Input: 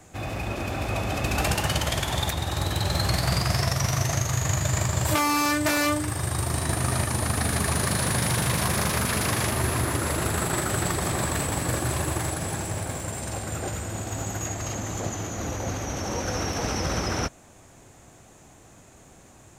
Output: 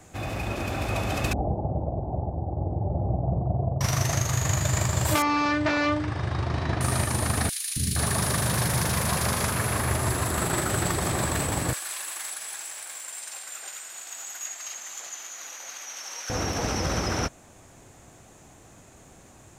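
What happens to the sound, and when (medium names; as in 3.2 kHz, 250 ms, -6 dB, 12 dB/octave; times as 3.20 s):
1.33–3.81 s: elliptic low-pass 770 Hz, stop band 60 dB
5.22–6.81 s: Bessel low-pass 3.4 kHz, order 6
7.49–10.38 s: three bands offset in time highs, lows, mids 270/470 ms, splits 300/2600 Hz
11.73–16.30 s: Bessel high-pass 2.1 kHz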